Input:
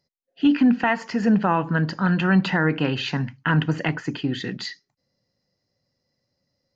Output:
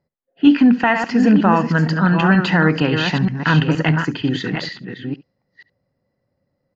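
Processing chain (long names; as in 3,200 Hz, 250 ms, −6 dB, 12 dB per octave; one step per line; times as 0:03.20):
delay that plays each chunk backwards 469 ms, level −6 dB
low-pass that shuts in the quiet parts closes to 1,600 Hz, open at −18 dBFS
on a send: single-tap delay 70 ms −19.5 dB
on the sum: level +5 dB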